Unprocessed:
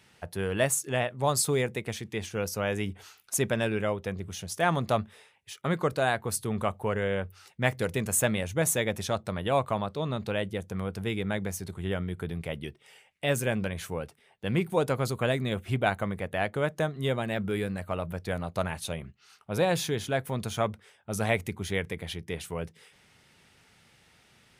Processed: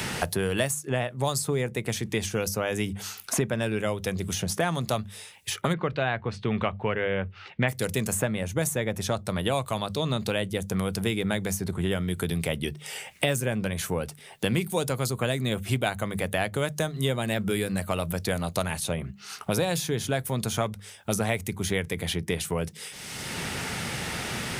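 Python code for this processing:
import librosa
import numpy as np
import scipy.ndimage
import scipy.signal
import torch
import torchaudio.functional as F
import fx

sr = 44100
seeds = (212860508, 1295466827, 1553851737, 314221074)

y = fx.lowpass(x, sr, hz=2600.0, slope=24, at=(5.72, 7.68), fade=0.02)
y = fx.bass_treble(y, sr, bass_db=3, treble_db=9)
y = fx.hum_notches(y, sr, base_hz=50, count=4)
y = fx.band_squash(y, sr, depth_pct=100)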